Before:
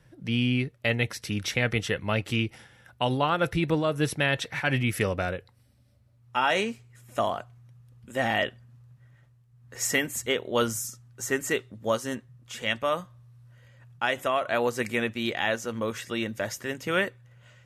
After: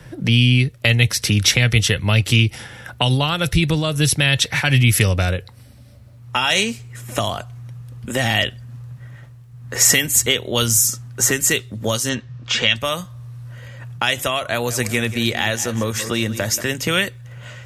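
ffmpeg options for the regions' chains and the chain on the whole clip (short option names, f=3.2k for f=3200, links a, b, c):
-filter_complex "[0:a]asettb=1/sr,asplit=3[a][b][c];[a]atrim=end=12.094[d];[b]atrim=start=12.09:end=12.76,asetpts=PTS-STARTPTS,afade=t=in:d=0.004:c=qsin,afade=t=out:st=0.666:d=0.004:c=qsin,lowpass=f=5.9k:w=0.5412,lowpass=f=5.9k:w=1.3066,equalizer=f=2.6k:w=0.43:g=4.5,bandreject=f=2k:w=20[e];[c]atrim=start=12.756[f];[d][e]acrossfade=d=0.004:c1=hsin:c2=qsin[g];[g][f]acrossfade=d=0.004:c1=qsin:c2=hsin,asettb=1/sr,asplit=3[h][i][j];[h]atrim=end=14.434[k];[i]atrim=start=14.43:end=16.61,asetpts=PTS-STARTPTS,afade=t=in:d=0.004:c=qsin,afade=t=out:st=2.176:d=0.004:c=qsin,equalizer=f=3.1k:t=o:w=0.9:g=-5,aecho=1:1:182|364|546|728:0.158|0.0666|0.028|0.0117,atrim=end_sample=96138[l];[j]atrim=start=16.606[m];[k][l]acrossfade=d=0.004:c1=hsin:c2=qsin[n];[n][m]acrossfade=d=0.004:c1=qsin:c2=hsin,acrossover=split=130|3000[o][p][q];[p]acompressor=threshold=-40dB:ratio=6[r];[o][r][q]amix=inputs=3:normalize=0,alimiter=level_in=19dB:limit=-1dB:release=50:level=0:latency=1,volume=-1dB"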